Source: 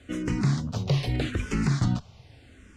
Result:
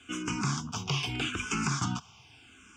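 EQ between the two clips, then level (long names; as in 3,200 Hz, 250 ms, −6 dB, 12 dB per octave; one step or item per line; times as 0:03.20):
high-pass filter 820 Hz 6 dB per octave
phaser with its sweep stopped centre 2,800 Hz, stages 8
+7.5 dB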